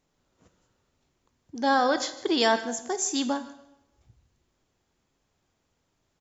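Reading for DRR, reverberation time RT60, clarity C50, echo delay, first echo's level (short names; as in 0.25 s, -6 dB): 10.0 dB, 0.85 s, 12.0 dB, 0.154 s, -19.0 dB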